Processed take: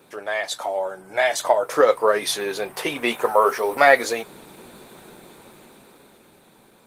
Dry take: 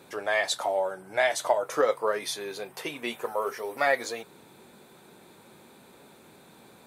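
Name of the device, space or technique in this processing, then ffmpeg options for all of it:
video call: -filter_complex "[0:a]asplit=3[s0][s1][s2];[s0]afade=t=out:st=2.29:d=0.02[s3];[s1]adynamicequalizer=threshold=0.01:dfrequency=1100:dqfactor=0.96:tfrequency=1100:tqfactor=0.96:attack=5:release=100:ratio=0.375:range=2:mode=boostabove:tftype=bell,afade=t=in:st=2.29:d=0.02,afade=t=out:st=3.8:d=0.02[s4];[s2]afade=t=in:st=3.8:d=0.02[s5];[s3][s4][s5]amix=inputs=3:normalize=0,highpass=f=120:p=1,dynaudnorm=f=240:g=13:m=6.31,volume=1.12" -ar 48000 -c:a libopus -b:a 20k

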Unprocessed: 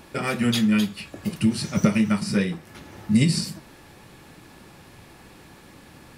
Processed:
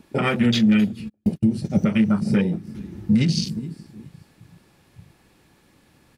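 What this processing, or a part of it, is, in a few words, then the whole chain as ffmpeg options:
stacked limiters: -filter_complex "[0:a]equalizer=f=980:w=0.74:g=-2.5,aecho=1:1:420|840|1260:0.1|0.033|0.0109,afwtdn=0.0251,asplit=3[s0][s1][s2];[s0]afade=t=out:st=1.08:d=0.02[s3];[s1]agate=range=0.00794:threshold=0.0355:ratio=16:detection=peak,afade=t=in:st=1.08:d=0.02,afade=t=out:st=1.69:d=0.02[s4];[s2]afade=t=in:st=1.69:d=0.02[s5];[s3][s4][s5]amix=inputs=3:normalize=0,alimiter=limit=0.224:level=0:latency=1:release=303,alimiter=limit=0.133:level=0:latency=1:release=205,volume=2.37"

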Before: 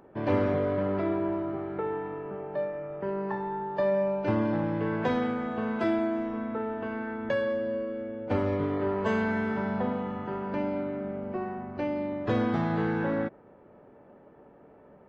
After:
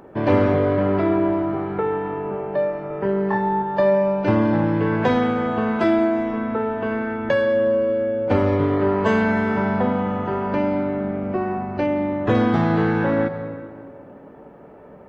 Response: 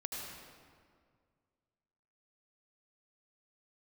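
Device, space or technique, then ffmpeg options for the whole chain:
ducked reverb: -filter_complex "[0:a]asettb=1/sr,asplit=3[s0][s1][s2];[s0]atrim=end=2.884[s3];[s1]atrim=start=2.88:end=3.62,asetpts=PTS-STARTPTS,afade=t=in:d=0.004:c=qsin,afade=t=out:st=0.736:d=0.004:c=qsin,asplit=2[s4][s5];[s5]adelay=25,volume=0.708[s6];[s4][s6]amix=inputs=2:normalize=0,atrim=end_sample=32634[s7];[s2]atrim=start=3.616[s8];[s3][s7]acrossfade=d=0.004:c1=hsin:c2=qsin[s9];[s9][s8]acrossfade=d=0.004:c1=qsin:c2=hsin,asettb=1/sr,asplit=3[s10][s11][s12];[s10]atrim=end=11.864[s13];[s11]atrim=start=11.86:end=12.35,asetpts=PTS-STARTPTS,afade=t=in:d=0.004:c=qsin,afade=t=out:st=0.486:d=0.004:c=qsin,equalizer=f=4700:t=o:w=0.3:g=-14[s14];[s12]atrim=start=12.346[s15];[s13][s14]acrossfade=d=0.004:c1=hsin:c2=qsin[s16];[s16][s15]acrossfade=d=0.004:c1=qsin:c2=hsin,asplit=3[s17][s18][s19];[1:a]atrim=start_sample=2205[s20];[s18][s20]afir=irnorm=-1:irlink=0[s21];[s19]apad=whole_len=665158[s22];[s21][s22]sidechaincompress=threshold=0.0282:ratio=8:attack=36:release=193,volume=0.473[s23];[s17][s23]amix=inputs=2:normalize=0,volume=2.37"

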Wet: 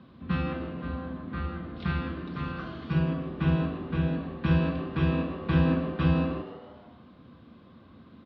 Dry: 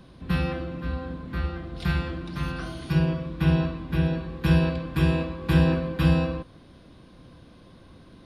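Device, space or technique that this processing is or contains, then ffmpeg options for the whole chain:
frequency-shifting delay pedal into a guitar cabinet: -filter_complex "[0:a]asplit=6[s0][s1][s2][s3][s4][s5];[s1]adelay=154,afreqshift=110,volume=0.2[s6];[s2]adelay=308,afreqshift=220,volume=0.104[s7];[s3]adelay=462,afreqshift=330,volume=0.0537[s8];[s4]adelay=616,afreqshift=440,volume=0.0282[s9];[s5]adelay=770,afreqshift=550,volume=0.0146[s10];[s0][s6][s7][s8][s9][s10]amix=inputs=6:normalize=0,highpass=80,equalizer=f=83:t=q:w=4:g=7,equalizer=f=230:t=q:w=4:g=10,equalizer=f=1200:t=q:w=4:g=7,lowpass=f=3900:w=0.5412,lowpass=f=3900:w=1.3066,volume=0.562"

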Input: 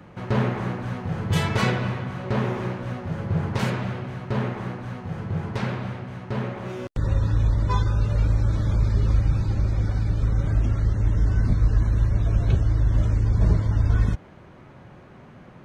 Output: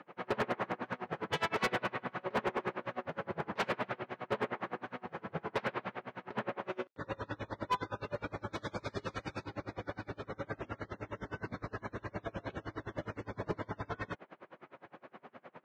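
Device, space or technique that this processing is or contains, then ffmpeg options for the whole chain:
helicopter radio: -filter_complex "[0:a]highpass=390,lowpass=3000,aeval=exprs='val(0)*pow(10,-30*(0.5-0.5*cos(2*PI*9.7*n/s))/20)':c=same,asoftclip=type=hard:threshold=0.0335,asettb=1/sr,asplit=3[s0][s1][s2];[s0]atrim=end=8.534[s3];[s1]atrim=start=8.53:end=9.44,asetpts=PTS-STARTPTS,afade=t=in:d=0.004:c=qsin,afade=t=out:st=0.906:d=0.004:c=qsin,aemphasis=mode=production:type=75kf[s4];[s2]atrim=start=9.436[s5];[s3][s4]acrossfade=d=0.004:c1=hsin:c2=qsin[s6];[s6][s5]acrossfade=d=0.004:c1=qsin:c2=hsin,volume=1.5"

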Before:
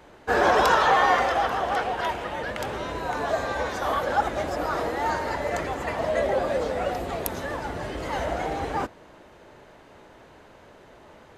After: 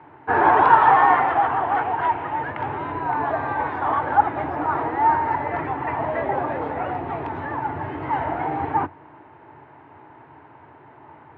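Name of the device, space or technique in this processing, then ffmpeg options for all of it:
bass cabinet: -af "highpass=f=89:w=0.5412,highpass=f=89:w=1.3066,equalizer=f=92:t=q:w=4:g=7,equalizer=f=140:t=q:w=4:g=7,equalizer=f=200:t=q:w=4:g=-10,equalizer=f=300:t=q:w=4:g=6,equalizer=f=540:t=q:w=4:g=-10,equalizer=f=900:t=q:w=4:g=10,lowpass=f=2300:w=0.5412,lowpass=f=2300:w=1.3066,volume=1.19"

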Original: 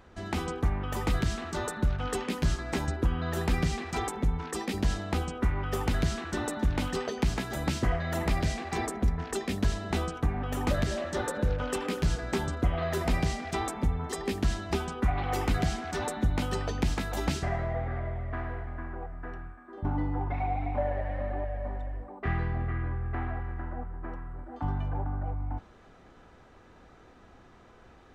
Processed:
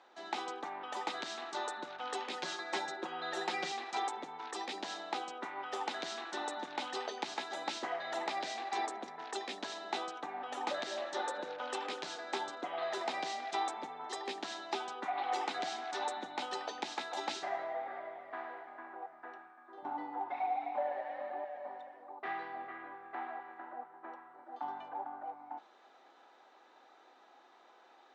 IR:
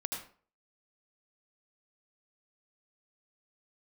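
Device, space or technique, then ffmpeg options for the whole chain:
phone speaker on a table: -filter_complex "[0:a]asettb=1/sr,asplit=3[s0][s1][s2];[s0]atrim=end=2.334[s3];[s1]atrim=start=2.33:end=3.72,asetpts=PTS-STARTPTS,afade=t=in:d=0.004:c=qsin,afade=t=out:st=1.386:d=0.004:c=qsin,aecho=1:1:5.5:0.79,atrim=end_sample=61299[s4];[s2]atrim=start=3.716[s5];[s3][s4]acrossfade=d=0.004:c1=hsin:c2=qsin[s6];[s6][s5]acrossfade=d=0.004:c1=qsin:c2=hsin,highpass=f=360:w=0.5412,highpass=f=360:w=1.3066,equalizer=f=450:t=q:w=4:g=-6,equalizer=f=830:t=q:w=4:g=8,equalizer=f=3800:t=q:w=4:g=7,lowpass=f=7300:w=0.5412,lowpass=f=7300:w=1.3066,volume=0.531"

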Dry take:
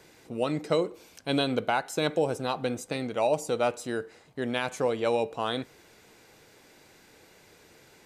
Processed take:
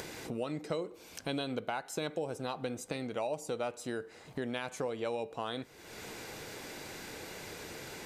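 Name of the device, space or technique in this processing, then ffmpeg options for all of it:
upward and downward compression: -af "acompressor=mode=upward:threshold=0.00631:ratio=2.5,acompressor=threshold=0.00562:ratio=3,volume=2.11"

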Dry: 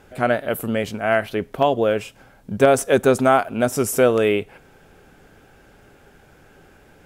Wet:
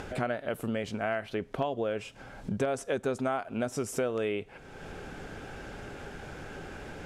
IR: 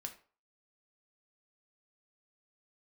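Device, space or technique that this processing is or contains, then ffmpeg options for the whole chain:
upward and downward compression: -af "acompressor=mode=upward:threshold=0.0158:ratio=2.5,acompressor=threshold=0.0224:ratio=4,lowpass=7700,volume=1.26"

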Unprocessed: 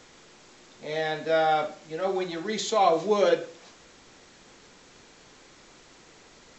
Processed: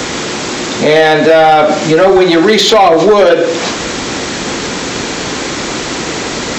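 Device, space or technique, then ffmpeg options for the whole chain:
mastering chain: -filter_complex "[0:a]highpass=45,equalizer=f=270:t=o:w=1:g=4,acrossover=split=290|4900[s0][s1][s2];[s0]acompressor=threshold=0.00631:ratio=4[s3];[s1]acompressor=threshold=0.0794:ratio=4[s4];[s2]acompressor=threshold=0.00112:ratio=4[s5];[s3][s4][s5]amix=inputs=3:normalize=0,acompressor=threshold=0.0178:ratio=2.5,asoftclip=type=tanh:threshold=0.0355,asoftclip=type=hard:threshold=0.0251,alimiter=level_in=63.1:limit=0.891:release=50:level=0:latency=1,volume=0.891"

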